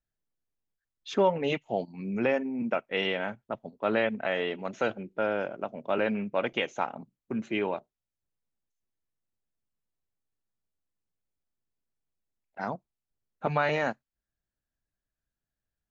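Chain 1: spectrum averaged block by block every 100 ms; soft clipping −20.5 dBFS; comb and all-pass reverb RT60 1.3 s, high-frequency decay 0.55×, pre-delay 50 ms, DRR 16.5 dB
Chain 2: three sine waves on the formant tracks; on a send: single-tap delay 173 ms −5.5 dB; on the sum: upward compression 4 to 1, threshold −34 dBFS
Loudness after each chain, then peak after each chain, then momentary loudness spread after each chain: −33.5, −30.0 LKFS; −20.0, −9.5 dBFS; 11, 14 LU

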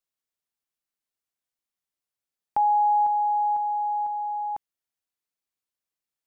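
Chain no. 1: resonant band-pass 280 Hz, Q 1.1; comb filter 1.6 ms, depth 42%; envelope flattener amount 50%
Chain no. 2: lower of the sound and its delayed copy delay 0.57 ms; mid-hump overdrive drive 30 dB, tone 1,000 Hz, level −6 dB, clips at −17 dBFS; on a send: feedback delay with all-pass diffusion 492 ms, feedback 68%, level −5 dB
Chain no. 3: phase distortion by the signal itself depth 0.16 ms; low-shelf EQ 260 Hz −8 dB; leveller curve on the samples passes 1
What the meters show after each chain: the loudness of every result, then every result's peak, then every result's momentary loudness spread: −34.0, −28.0, −24.0 LKFS; −23.0, −18.5, −17.0 dBFS; 7, 17, 9 LU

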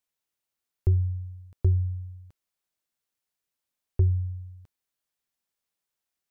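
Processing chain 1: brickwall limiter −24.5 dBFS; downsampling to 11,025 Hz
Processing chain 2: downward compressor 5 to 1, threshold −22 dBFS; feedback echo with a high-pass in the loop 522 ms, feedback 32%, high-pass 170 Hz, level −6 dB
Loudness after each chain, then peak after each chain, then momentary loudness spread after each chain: −34.0, −32.5 LKFS; −24.5, −15.0 dBFS; 16, 17 LU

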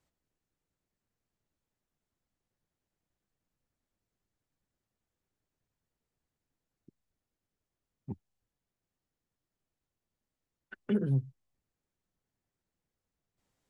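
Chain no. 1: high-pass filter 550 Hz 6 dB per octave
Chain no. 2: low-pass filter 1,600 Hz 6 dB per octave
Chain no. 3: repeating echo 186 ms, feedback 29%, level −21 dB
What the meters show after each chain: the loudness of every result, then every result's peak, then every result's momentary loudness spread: −41.5, −32.0, −33.5 LKFS; −26.5, −19.5, −19.5 dBFS; 17, 18, 19 LU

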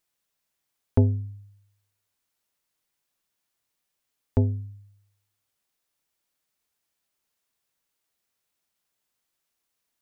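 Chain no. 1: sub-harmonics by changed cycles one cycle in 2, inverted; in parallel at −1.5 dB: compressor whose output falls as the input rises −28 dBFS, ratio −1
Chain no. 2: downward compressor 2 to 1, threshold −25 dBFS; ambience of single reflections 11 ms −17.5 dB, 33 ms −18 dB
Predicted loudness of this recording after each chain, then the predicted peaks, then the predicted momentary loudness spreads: −26.0, −31.5 LKFS; −6.0, −10.0 dBFS; 17, 17 LU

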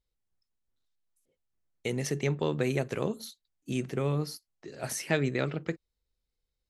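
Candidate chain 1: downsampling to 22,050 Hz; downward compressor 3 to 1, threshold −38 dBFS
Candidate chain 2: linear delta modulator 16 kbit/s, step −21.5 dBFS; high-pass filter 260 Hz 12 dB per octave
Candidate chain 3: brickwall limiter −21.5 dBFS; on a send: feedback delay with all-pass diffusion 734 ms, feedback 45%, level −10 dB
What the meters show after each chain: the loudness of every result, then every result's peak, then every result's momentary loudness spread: −41.0, −31.0, −34.5 LKFS; −20.5, −14.0, −19.5 dBFS; 10, 11, 10 LU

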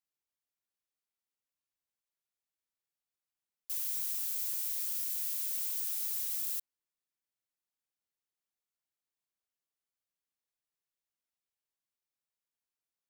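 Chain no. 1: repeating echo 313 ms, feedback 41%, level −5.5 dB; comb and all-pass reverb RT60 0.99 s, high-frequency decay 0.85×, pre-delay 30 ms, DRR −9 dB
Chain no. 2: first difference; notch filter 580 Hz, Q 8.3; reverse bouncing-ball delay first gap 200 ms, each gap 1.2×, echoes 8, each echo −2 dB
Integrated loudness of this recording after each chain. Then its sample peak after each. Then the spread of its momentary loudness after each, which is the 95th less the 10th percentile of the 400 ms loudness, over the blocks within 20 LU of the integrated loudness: −24.0, −25.0 LKFS; −13.5, −13.0 dBFS; 11, 18 LU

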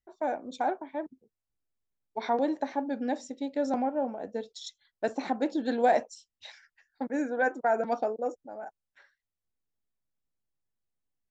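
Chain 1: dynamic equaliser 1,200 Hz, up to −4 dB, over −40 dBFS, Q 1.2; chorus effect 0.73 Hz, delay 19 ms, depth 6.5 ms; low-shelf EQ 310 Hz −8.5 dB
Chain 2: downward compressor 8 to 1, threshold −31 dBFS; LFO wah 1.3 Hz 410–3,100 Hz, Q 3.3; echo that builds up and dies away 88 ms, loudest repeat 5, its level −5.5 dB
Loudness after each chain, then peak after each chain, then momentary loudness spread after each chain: −37.5, −42.0 LKFS; −18.5, −23.0 dBFS; 15, 11 LU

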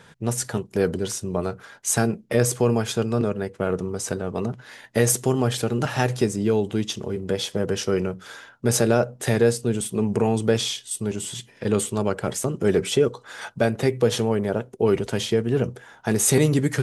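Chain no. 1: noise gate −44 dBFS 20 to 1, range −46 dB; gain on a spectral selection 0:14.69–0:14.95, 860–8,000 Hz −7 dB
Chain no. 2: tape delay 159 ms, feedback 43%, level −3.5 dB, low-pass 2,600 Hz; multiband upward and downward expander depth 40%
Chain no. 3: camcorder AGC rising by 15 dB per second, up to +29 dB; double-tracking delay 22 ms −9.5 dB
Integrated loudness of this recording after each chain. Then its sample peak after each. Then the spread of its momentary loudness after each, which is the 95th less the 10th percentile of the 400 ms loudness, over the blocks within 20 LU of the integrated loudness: −23.5, −22.0, −22.5 LKFS; −6.0, −2.5, −4.5 dBFS; 8, 10, 6 LU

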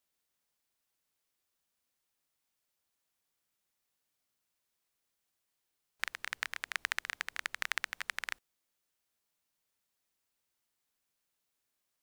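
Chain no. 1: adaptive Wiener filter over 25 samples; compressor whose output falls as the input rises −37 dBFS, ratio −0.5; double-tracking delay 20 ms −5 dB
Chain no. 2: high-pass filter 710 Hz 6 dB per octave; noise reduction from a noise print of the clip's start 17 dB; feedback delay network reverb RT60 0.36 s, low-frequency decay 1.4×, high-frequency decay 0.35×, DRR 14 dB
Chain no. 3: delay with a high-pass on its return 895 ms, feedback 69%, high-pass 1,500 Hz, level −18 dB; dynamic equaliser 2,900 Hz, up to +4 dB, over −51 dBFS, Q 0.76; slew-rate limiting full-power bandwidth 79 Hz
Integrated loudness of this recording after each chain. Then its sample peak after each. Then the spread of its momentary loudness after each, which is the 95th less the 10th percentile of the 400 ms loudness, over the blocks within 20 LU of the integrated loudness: −38.5, −38.5, −45.5 LKFS; −12.5, −11.0, −23.0 dBFS; 4, 5, 20 LU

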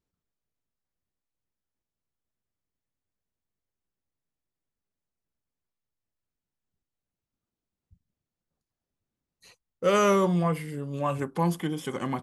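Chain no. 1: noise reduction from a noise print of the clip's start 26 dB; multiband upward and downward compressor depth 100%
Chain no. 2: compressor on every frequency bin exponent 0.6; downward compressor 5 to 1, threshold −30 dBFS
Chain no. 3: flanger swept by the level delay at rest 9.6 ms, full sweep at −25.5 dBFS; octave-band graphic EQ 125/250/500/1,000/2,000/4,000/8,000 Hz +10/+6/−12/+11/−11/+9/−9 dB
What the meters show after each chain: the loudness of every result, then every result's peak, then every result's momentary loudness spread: −27.0, −34.0, −24.0 LKFS; −10.5, −20.0, −10.5 dBFS; 21, 15, 9 LU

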